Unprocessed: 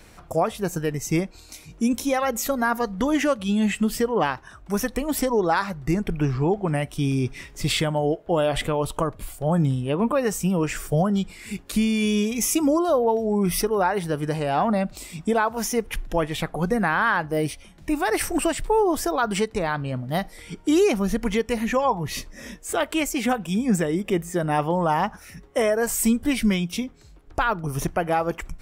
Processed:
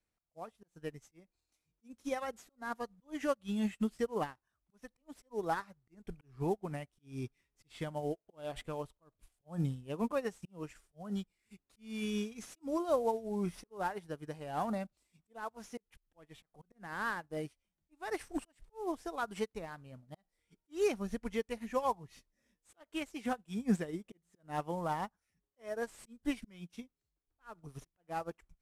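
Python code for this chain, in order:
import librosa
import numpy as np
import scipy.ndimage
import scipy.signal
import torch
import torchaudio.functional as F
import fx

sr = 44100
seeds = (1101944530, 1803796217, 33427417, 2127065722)

y = fx.cvsd(x, sr, bps=64000)
y = fx.auto_swell(y, sr, attack_ms=208.0)
y = fx.upward_expand(y, sr, threshold_db=-38.0, expansion=2.5)
y = F.gain(torch.from_numpy(y), -7.5).numpy()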